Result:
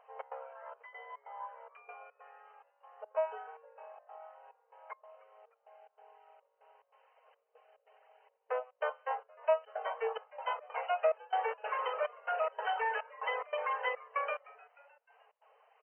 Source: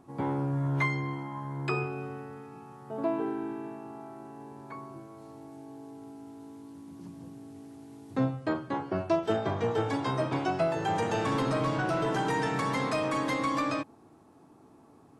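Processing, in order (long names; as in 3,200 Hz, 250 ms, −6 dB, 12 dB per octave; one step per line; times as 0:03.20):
reverb reduction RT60 1.2 s
bit reduction 11 bits
gate pattern "xx.xxxx.." 149 BPM −24 dB
echo with shifted repeats 293 ms, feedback 48%, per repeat +150 Hz, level −22.5 dB
wrong playback speed 25 fps video run at 24 fps
linear-phase brick-wall band-pass 440–3,100 Hz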